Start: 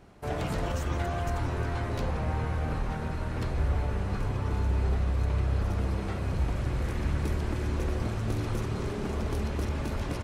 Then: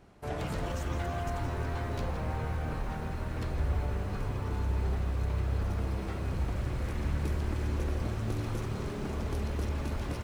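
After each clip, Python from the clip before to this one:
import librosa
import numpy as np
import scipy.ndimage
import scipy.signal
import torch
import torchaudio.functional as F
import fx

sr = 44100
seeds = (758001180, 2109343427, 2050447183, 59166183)

y = fx.echo_crushed(x, sr, ms=165, feedback_pct=55, bits=8, wet_db=-12)
y = F.gain(torch.from_numpy(y), -3.5).numpy()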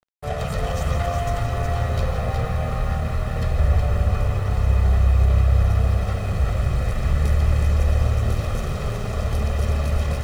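y = x + 0.88 * np.pad(x, (int(1.6 * sr / 1000.0), 0))[:len(x)]
y = np.sign(y) * np.maximum(np.abs(y) - 10.0 ** (-44.5 / 20.0), 0.0)
y = y + 10.0 ** (-5.0 / 20.0) * np.pad(y, (int(368 * sr / 1000.0), 0))[:len(y)]
y = F.gain(torch.from_numpy(y), 7.0).numpy()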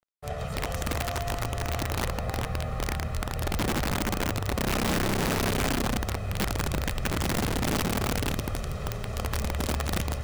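y = (np.mod(10.0 ** (14.5 / 20.0) * x + 1.0, 2.0) - 1.0) / 10.0 ** (14.5 / 20.0)
y = F.gain(torch.from_numpy(y), -7.5).numpy()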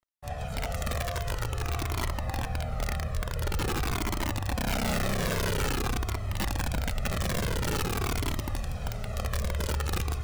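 y = fx.comb_cascade(x, sr, direction='falling', hz=0.48)
y = F.gain(torch.from_numpy(y), 2.0).numpy()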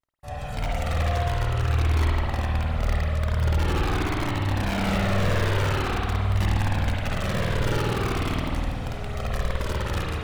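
y = fx.vibrato(x, sr, rate_hz=0.31, depth_cents=20.0)
y = fx.rev_spring(y, sr, rt60_s=1.8, pass_ms=(51,), chirp_ms=25, drr_db=-3.0)
y = fx.slew_limit(y, sr, full_power_hz=170.0)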